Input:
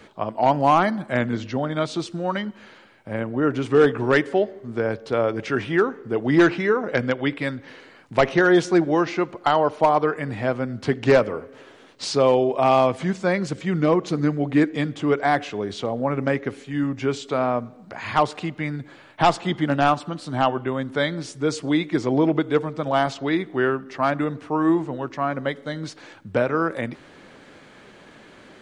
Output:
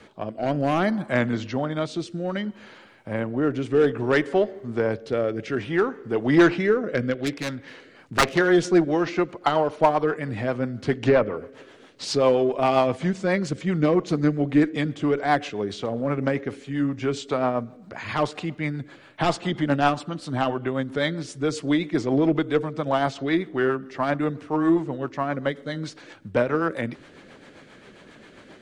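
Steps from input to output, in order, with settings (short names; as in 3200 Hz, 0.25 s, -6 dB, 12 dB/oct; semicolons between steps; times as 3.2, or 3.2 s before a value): 7.13–8.38 self-modulated delay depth 0.42 ms; in parallel at -8 dB: one-sided clip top -24 dBFS, bottom -11 dBFS; 10.95–11.37 on the sum: treble ducked by the level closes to 2700 Hz, closed at -13 dBFS; rotary speaker horn 0.6 Hz, later 7.5 Hz, at 7.5; gain -1.5 dB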